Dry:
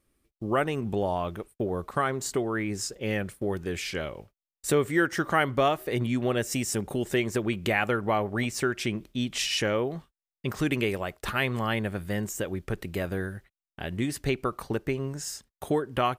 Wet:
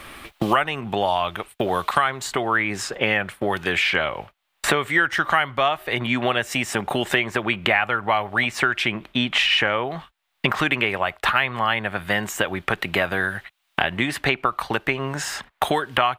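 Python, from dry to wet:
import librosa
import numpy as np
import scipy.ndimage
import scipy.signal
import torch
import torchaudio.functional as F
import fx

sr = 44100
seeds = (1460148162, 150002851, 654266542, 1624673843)

y = fx.band_shelf(x, sr, hz=1600.0, db=13.5, octaves=2.9)
y = fx.band_squash(y, sr, depth_pct=100)
y = y * librosa.db_to_amplitude(-2.5)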